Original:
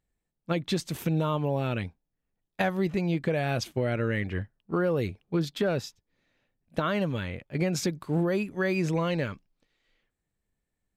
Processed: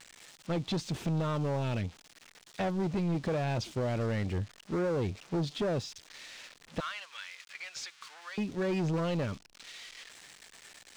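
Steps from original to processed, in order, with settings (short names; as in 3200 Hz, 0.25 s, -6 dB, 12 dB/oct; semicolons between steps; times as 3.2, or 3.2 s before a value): switching spikes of -29.5 dBFS; 6.8–8.38 HPF 1300 Hz 24 dB/oct; dynamic EQ 1700 Hz, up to -7 dB, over -47 dBFS, Q 1.2; soft clip -29 dBFS, distortion -9 dB; air absorption 130 m; gain +2.5 dB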